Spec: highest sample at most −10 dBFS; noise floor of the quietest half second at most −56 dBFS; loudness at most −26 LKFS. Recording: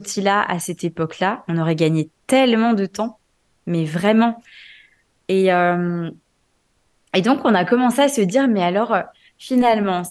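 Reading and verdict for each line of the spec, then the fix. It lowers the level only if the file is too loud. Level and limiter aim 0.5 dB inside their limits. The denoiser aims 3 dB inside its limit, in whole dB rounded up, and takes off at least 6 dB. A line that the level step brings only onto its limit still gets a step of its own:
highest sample −4.0 dBFS: out of spec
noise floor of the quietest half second −65 dBFS: in spec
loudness −18.5 LKFS: out of spec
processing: level −8 dB

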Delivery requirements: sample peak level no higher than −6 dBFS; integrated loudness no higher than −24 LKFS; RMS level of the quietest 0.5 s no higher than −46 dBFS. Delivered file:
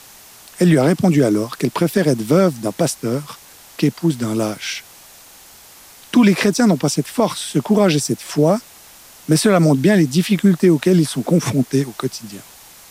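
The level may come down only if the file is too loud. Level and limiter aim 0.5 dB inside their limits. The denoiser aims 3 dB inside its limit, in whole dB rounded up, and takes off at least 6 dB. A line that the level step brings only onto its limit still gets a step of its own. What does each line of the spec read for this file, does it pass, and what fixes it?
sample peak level −3.5 dBFS: out of spec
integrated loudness −17.0 LKFS: out of spec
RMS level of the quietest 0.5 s −44 dBFS: out of spec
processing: level −7.5 dB

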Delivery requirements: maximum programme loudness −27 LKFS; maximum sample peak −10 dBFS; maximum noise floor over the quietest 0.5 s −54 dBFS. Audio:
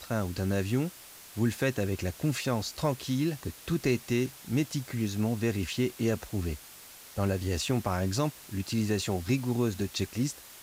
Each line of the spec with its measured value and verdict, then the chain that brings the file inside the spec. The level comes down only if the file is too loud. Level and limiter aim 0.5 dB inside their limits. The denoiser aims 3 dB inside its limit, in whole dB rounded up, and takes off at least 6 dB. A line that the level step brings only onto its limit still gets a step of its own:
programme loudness −31.0 LKFS: in spec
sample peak −15.5 dBFS: in spec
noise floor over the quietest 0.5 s −50 dBFS: out of spec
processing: broadband denoise 7 dB, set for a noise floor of −50 dBFS

